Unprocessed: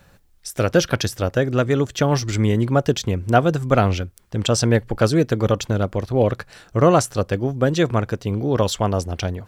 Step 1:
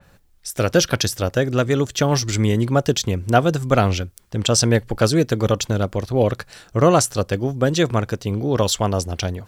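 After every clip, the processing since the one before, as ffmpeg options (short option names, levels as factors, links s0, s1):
-af "adynamicequalizer=threshold=0.0126:dfrequency=3100:dqfactor=0.7:tfrequency=3100:tqfactor=0.7:attack=5:release=100:ratio=0.375:range=3:mode=boostabove:tftype=highshelf"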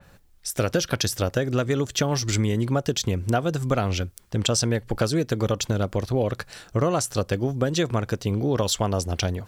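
-af "acompressor=threshold=0.112:ratio=6"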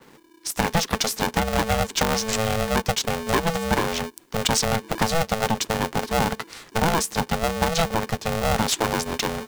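-filter_complex "[0:a]acrossover=split=140|860[s0][s1][s2];[s0]asoftclip=type=hard:threshold=0.02[s3];[s3][s1][s2]amix=inputs=3:normalize=0,aeval=exprs='val(0)*sgn(sin(2*PI*330*n/s))':c=same,volume=1.19"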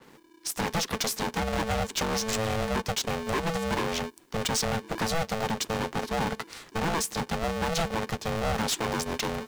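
-af "asoftclip=type=hard:threshold=0.1,volume=0.708" -ar 44100 -c:a adpcm_ima_wav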